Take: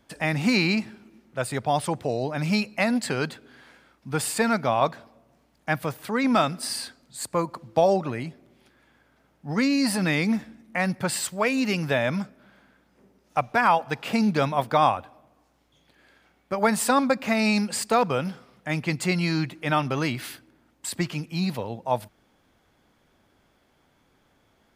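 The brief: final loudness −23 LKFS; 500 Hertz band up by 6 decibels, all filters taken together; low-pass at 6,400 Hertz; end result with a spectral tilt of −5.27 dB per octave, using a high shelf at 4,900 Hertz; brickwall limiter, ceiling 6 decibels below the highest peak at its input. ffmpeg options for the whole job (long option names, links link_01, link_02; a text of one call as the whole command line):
ffmpeg -i in.wav -af "lowpass=6400,equalizer=frequency=500:width_type=o:gain=7.5,highshelf=frequency=4900:gain=-8.5,volume=0.5dB,alimiter=limit=-9.5dB:level=0:latency=1" out.wav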